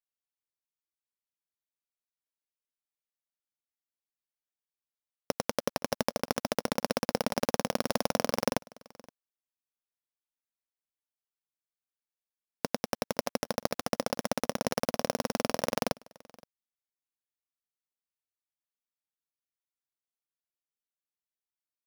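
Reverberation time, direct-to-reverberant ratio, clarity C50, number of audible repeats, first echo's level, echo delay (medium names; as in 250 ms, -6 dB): no reverb, no reverb, no reverb, 1, -24.0 dB, 520 ms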